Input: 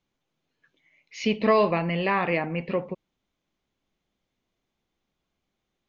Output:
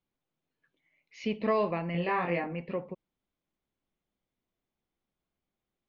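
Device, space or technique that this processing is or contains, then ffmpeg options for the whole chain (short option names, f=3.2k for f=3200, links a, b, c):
behind a face mask: -filter_complex "[0:a]asettb=1/sr,asplit=3[a][b][c];[a]atrim=end=1.924[d];[b]atrim=start=1.92:end=2.53,asetpts=PTS-STARTPTS,afade=t=in:d=0.004:c=qsin,afade=t=out:st=0.606:d=0.004:c=qsin,asplit=2[e][f];[f]adelay=23,volume=-2dB[g];[e][g]amix=inputs=2:normalize=0,atrim=end_sample=26901[h];[c]atrim=start=2.526[i];[d][h]acrossfade=d=0.004:c1=hsin:c2=qsin[j];[j][i]acrossfade=d=0.004:c1=qsin:c2=hsin,highshelf=f=3.3k:g=-8,volume=-7dB"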